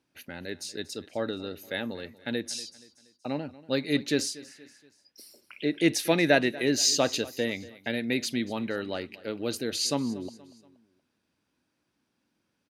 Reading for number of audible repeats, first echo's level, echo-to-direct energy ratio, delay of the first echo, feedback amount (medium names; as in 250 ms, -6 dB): 3, -19.5 dB, -18.5 dB, 237 ms, 45%